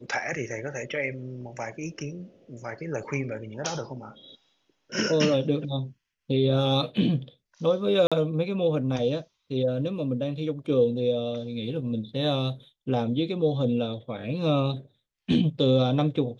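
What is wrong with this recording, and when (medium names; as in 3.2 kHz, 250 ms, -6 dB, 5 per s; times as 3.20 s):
8.07–8.12 s: dropout 46 ms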